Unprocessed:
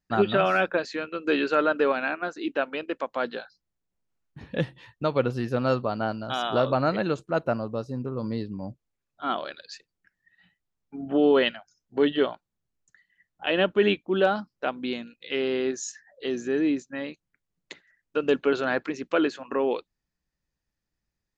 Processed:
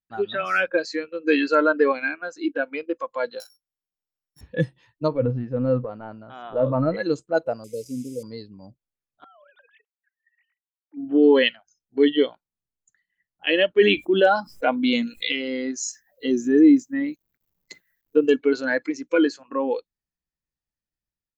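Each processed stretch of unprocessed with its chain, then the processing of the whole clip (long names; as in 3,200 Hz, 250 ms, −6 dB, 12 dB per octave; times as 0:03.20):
0:03.40–0:04.41: samples sorted by size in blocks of 8 samples + low-shelf EQ 420 Hz −9.5 dB
0:05.08–0:06.97: transient designer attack −5 dB, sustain +4 dB + low-pass filter 2,000 Hz
0:07.64–0:08.23: linear delta modulator 64 kbit/s, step −41 dBFS + linear-phase brick-wall band-stop 600–2,000 Hz
0:09.24–0:10.97: three sine waves on the formant tracks + downward compressor 16 to 1, threshold −40 dBFS
0:13.81–0:15.32: notch filter 4,600 Hz + envelope flattener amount 50%
0:15.89–0:18.26: low-shelf EQ 350 Hz +10 dB + bit-depth reduction 12 bits, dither none
whole clip: noise reduction from a noise print of the clip's start 15 dB; automatic gain control gain up to 5.5 dB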